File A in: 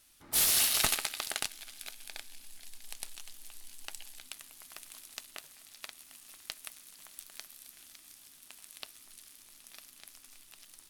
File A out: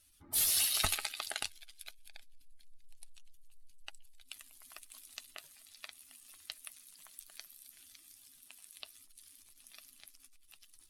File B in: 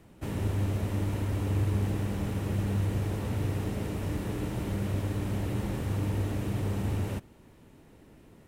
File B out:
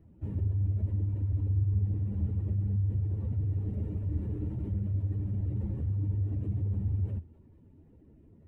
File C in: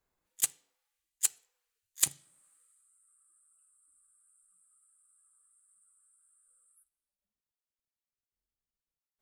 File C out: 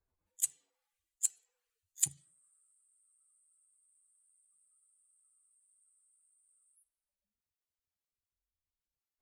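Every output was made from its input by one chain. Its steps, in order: spectral contrast raised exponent 1.8; bell 83 Hz +10.5 dB 0.35 oct; gain -3.5 dB

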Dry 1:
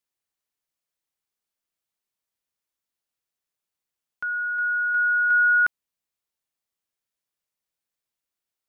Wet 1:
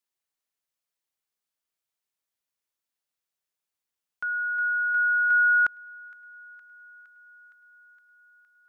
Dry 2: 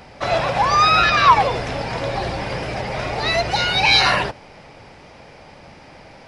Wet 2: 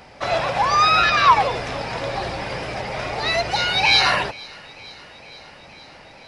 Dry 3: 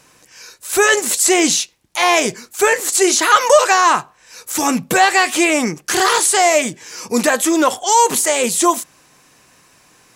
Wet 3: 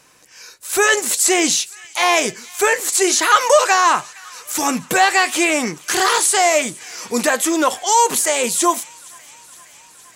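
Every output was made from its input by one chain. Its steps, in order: low shelf 360 Hz -4.5 dB; on a send: thin delay 0.464 s, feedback 72%, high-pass 1500 Hz, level -22 dB; on the sum: gain -1 dB

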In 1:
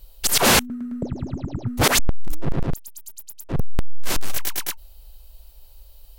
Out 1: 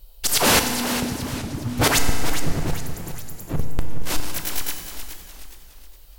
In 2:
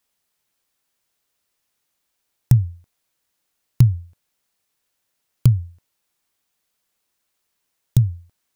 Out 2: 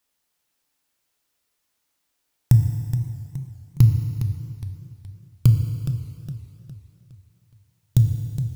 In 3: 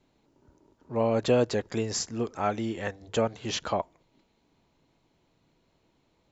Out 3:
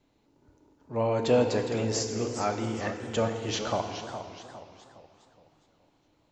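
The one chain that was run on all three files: FDN reverb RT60 2.3 s, low-frequency decay 0.9×, high-frequency decay 0.9×, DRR 5 dB; warbling echo 0.416 s, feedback 41%, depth 187 cents, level -10 dB; gain -1.5 dB

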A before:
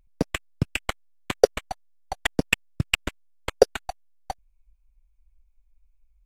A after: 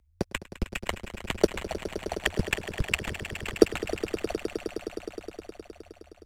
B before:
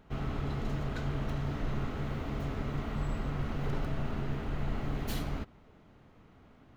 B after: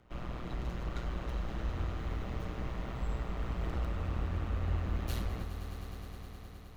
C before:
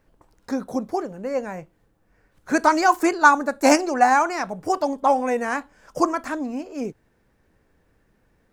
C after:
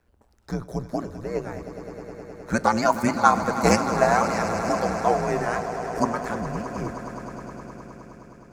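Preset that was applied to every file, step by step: AM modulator 120 Hz, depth 65%; frequency shift -88 Hz; swelling echo 0.104 s, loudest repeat 5, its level -14 dB

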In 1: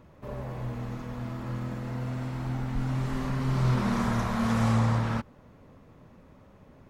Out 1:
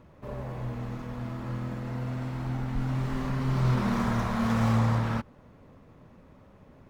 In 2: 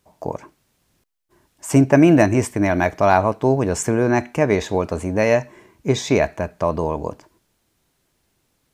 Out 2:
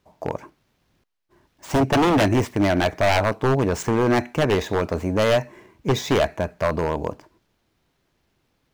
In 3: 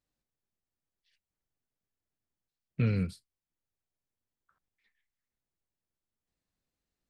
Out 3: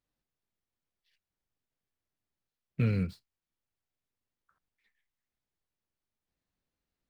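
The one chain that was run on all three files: median filter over 5 samples; wavefolder -12 dBFS

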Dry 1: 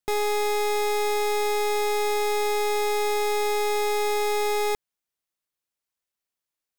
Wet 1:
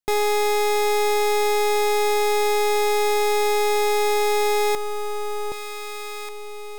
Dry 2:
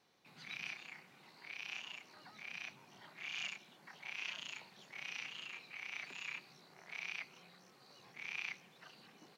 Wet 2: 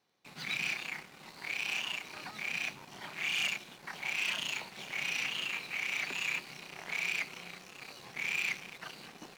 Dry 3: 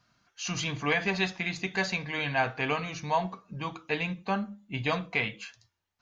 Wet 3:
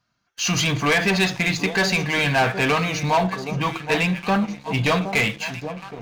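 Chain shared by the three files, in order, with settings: echo with dull and thin repeats by turns 0.769 s, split 900 Hz, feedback 59%, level -12.5 dB; sample leveller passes 3; gain +1.5 dB

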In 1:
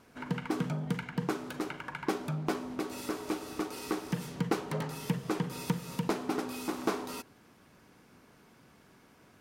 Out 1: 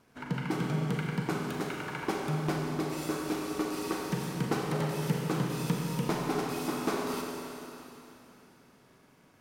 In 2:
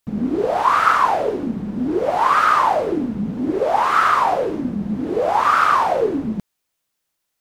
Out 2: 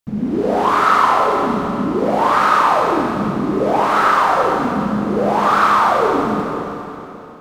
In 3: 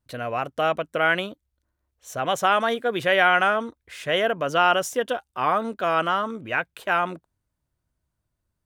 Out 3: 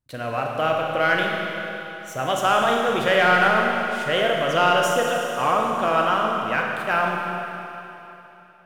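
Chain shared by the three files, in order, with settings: bell 140 Hz +4 dB 0.36 oct; sample leveller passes 1; Schroeder reverb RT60 3.2 s, combs from 30 ms, DRR -0.5 dB; gain -4 dB

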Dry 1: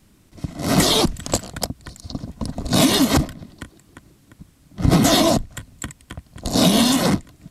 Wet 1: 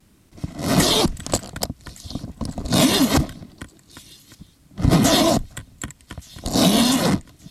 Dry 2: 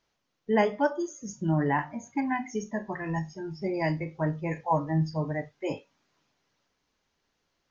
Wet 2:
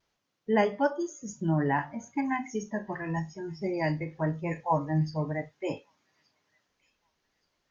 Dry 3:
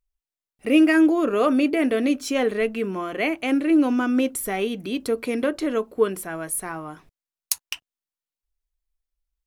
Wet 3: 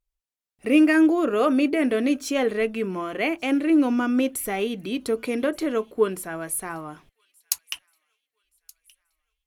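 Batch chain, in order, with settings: vibrato 0.95 Hz 35 cents; thin delay 1.174 s, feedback 40%, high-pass 2900 Hz, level -23 dB; added harmonics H 3 -30 dB, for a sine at -2.5 dBFS

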